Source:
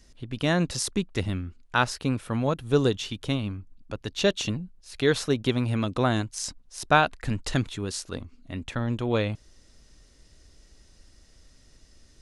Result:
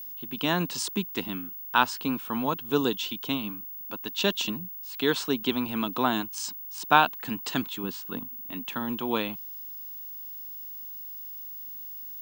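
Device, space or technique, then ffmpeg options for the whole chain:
old television with a line whistle: -filter_complex "[0:a]asettb=1/sr,asplit=3[link_01][link_02][link_03];[link_01]atrim=end=7.834[link_04];[link_02]atrim=start=7.83:end=8.36,asetpts=PTS-STARTPTS,afade=type=in:duration=0.004:curve=qsin,afade=type=out:start_time=0.526:duration=0.004:curve=qsin,bass=frequency=250:gain=7,treble=frequency=4000:gain=-12[link_05];[link_03]atrim=start=8.356[link_06];[link_04][link_05]acrossfade=duration=0.004:curve1=hsin:curve2=qsin[link_07];[link_07][link_06]acrossfade=duration=0.004:curve1=qsin:curve2=hsin,highpass=frequency=190:width=0.5412,highpass=frequency=190:width=1.3066,equalizer=frequency=400:width_type=q:width=4:gain=-3,equalizer=frequency=560:width_type=q:width=4:gain=-9,equalizer=frequency=970:width_type=q:width=4:gain=7,equalizer=frequency=2000:width_type=q:width=4:gain=-5,equalizer=frequency=3000:width_type=q:width=4:gain=5,equalizer=frequency=5900:width_type=q:width=4:gain=-3,lowpass=frequency=8600:width=0.5412,lowpass=frequency=8600:width=1.3066,aeval=exprs='val(0)+0.0141*sin(2*PI*15625*n/s)':channel_layout=same"

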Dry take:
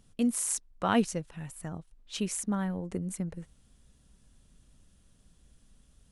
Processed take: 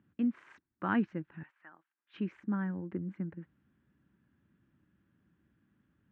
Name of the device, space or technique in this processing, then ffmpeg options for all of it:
bass cabinet: -filter_complex "[0:a]highpass=frequency=88:width=0.5412,highpass=frequency=88:width=1.3066,equalizer=frequency=200:width_type=q:width=4:gain=3,equalizer=frequency=320:width_type=q:width=4:gain=10,equalizer=frequency=480:width_type=q:width=4:gain=-7,equalizer=frequency=680:width_type=q:width=4:gain=-7,equalizer=frequency=1600:width_type=q:width=4:gain=7,lowpass=frequency=2300:width=0.5412,lowpass=frequency=2300:width=1.3066,asettb=1/sr,asplit=3[link_01][link_02][link_03];[link_01]atrim=end=1.434[link_04];[link_02]atrim=start=1.43:end=2.14,asetpts=PTS-STARTPTS,afade=type=in:duration=0.004:curve=qsin,afade=type=out:start_time=0.706:duration=0.004:curve=qsin,highpass=1000[link_05];[link_03]atrim=start=2.136[link_06];[link_04][link_05]acrossfade=duration=0.004:curve1=hsin:curve2=qsin[link_07];[link_07][link_06]acrossfade=duration=0.004:curve1=qsin:curve2=hsin,volume=-5.5dB"

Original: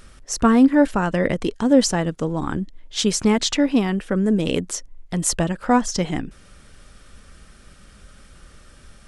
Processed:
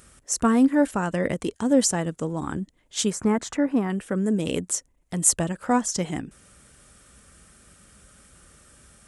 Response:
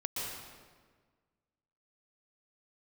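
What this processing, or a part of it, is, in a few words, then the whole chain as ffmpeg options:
budget condenser microphone: -filter_complex "[0:a]highpass=62,highshelf=frequency=6100:width_type=q:width=1.5:gain=7,asettb=1/sr,asplit=3[link_01][link_02][link_03];[link_01]atrim=end=3.104[link_04];[link_02]atrim=start=3.1:end=3.9,asetpts=PTS-STARTPTS,afade=type=in:duration=0.004:curve=qsin,afade=type=out:start_time=0.796:duration=0.004:curve=qsin,highshelf=frequency=2200:width_type=q:width=1.5:gain=-10[link_05];[link_03]atrim=start=3.896[link_06];[link_04][link_05]acrossfade=duration=0.004:curve1=hsin:curve2=qsin[link_07];[link_07][link_06]acrossfade=duration=0.004:curve1=qsin:curve2=hsin,volume=-4.5dB"

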